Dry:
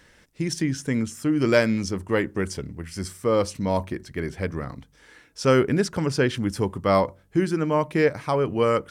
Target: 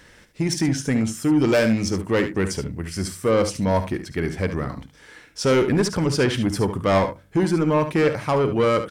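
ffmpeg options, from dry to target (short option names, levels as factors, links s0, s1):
-af "asoftclip=type=tanh:threshold=0.119,aecho=1:1:53|72:0.158|0.299,volume=1.78"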